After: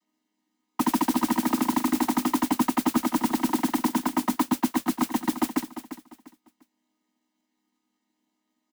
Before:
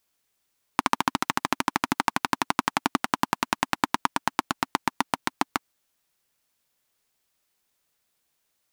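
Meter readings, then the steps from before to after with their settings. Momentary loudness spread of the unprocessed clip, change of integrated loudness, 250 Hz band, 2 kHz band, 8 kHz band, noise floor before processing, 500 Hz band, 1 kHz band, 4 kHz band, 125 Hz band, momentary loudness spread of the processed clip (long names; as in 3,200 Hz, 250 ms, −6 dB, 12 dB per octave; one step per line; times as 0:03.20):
3 LU, +2.0 dB, +9.0 dB, −7.0 dB, +2.0 dB, −75 dBFS, +2.5 dB, −2.5 dB, −4.5 dB, +1.5 dB, 6 LU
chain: channel vocoder with a chord as carrier minor triad, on G#3
parametric band 300 Hz +10.5 dB 0.93 octaves
comb filter 1 ms, depth 65%
brickwall limiter −12 dBFS, peak gain reduction 10 dB
noise that follows the level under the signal 12 dB
soft clipping −15 dBFS, distortion −17 dB
repeating echo 348 ms, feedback 28%, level −12 dB
level +1 dB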